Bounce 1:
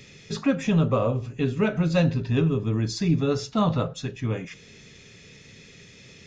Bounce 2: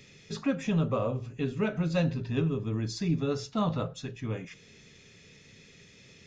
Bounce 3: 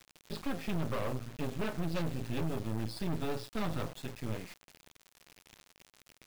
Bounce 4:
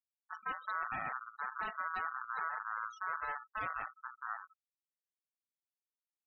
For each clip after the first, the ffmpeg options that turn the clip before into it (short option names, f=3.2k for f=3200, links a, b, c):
-af "bandreject=f=60:t=h:w=6,bandreject=f=120:t=h:w=6,volume=-6dB"
-af "aresample=11025,volume=26dB,asoftclip=hard,volume=-26dB,aresample=44100,acrusher=bits=5:dc=4:mix=0:aa=0.000001"
-af "afftfilt=real='re*gte(hypot(re,im),0.0251)':imag='im*gte(hypot(re,im),0.0251)':win_size=1024:overlap=0.75,aeval=exprs='val(0)*sin(2*PI*1300*n/s)':c=same,volume=-2.5dB"